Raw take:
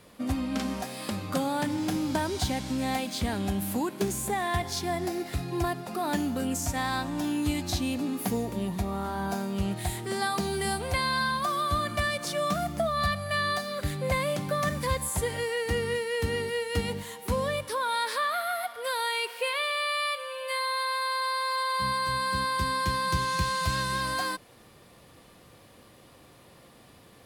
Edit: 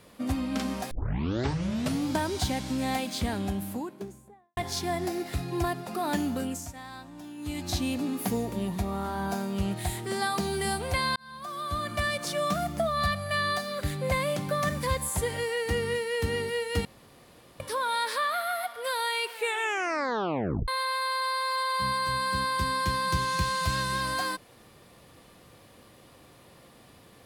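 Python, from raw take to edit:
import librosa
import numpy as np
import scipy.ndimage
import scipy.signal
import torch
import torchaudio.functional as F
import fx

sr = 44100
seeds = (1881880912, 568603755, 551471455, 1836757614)

y = fx.studio_fade_out(x, sr, start_s=3.14, length_s=1.43)
y = fx.edit(y, sr, fx.tape_start(start_s=0.91, length_s=1.18),
    fx.fade_down_up(start_s=6.34, length_s=1.42, db=-13.5, fade_s=0.39),
    fx.fade_in_span(start_s=11.16, length_s=0.94),
    fx.room_tone_fill(start_s=16.85, length_s=0.75),
    fx.tape_stop(start_s=19.31, length_s=1.37), tone=tone)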